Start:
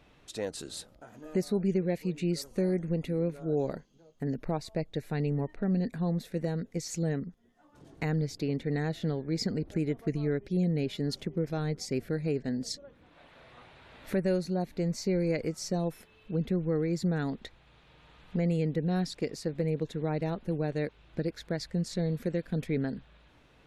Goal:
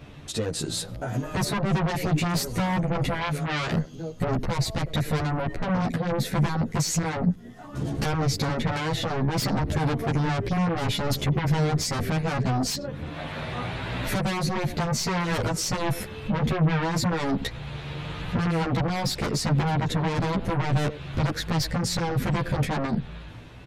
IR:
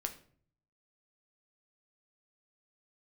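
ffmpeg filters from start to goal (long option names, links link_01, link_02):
-filter_complex "[0:a]asplit=2[link_01][link_02];[link_02]adelay=100,highpass=300,lowpass=3400,asoftclip=type=hard:threshold=-26dB,volume=-26dB[link_03];[link_01][link_03]amix=inputs=2:normalize=0,asoftclip=type=tanh:threshold=-27.5dB,dynaudnorm=framelen=140:gausssize=13:maxgain=9dB,aeval=exprs='0.119*sin(PI/2*2.82*val(0)/0.119)':channel_layout=same,acompressor=threshold=-28dB:ratio=2.5,asettb=1/sr,asplit=3[link_04][link_05][link_06];[link_04]atrim=end=3.214[link_07];[link_05]atrim=start=3.21:end=3.72,asetpts=PTS-STARTPTS,afade=type=in:duration=0.004:curve=qsin,afade=type=out:start_time=0.506:duration=0.004:curve=qsin,tiltshelf=frequency=1200:gain=-6[link_08];[link_06]atrim=start=3.716[link_09];[link_07][link_08]acrossfade=duration=0.004:curve1=hsin:curve2=qsin[link_10];[link_10][link_09]acrossfade=duration=0.004:curve1=qsin:curve2=hsin,aresample=32000,aresample=44100,equalizer=frequency=120:width=0.92:gain=10,asplit=2[link_11][link_12];[link_12]adelay=11.3,afreqshift=0.62[link_13];[link_11][link_13]amix=inputs=2:normalize=1,volume=2dB"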